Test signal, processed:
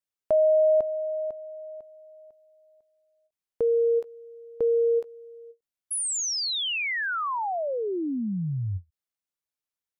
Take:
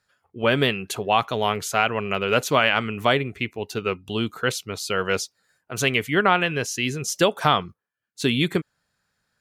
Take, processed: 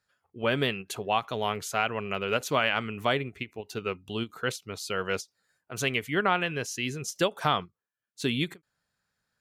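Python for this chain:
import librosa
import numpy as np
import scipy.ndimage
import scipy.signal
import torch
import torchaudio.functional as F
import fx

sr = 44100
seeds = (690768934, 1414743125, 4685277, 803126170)

y = fx.end_taper(x, sr, db_per_s=420.0)
y = y * 10.0 ** (-6.5 / 20.0)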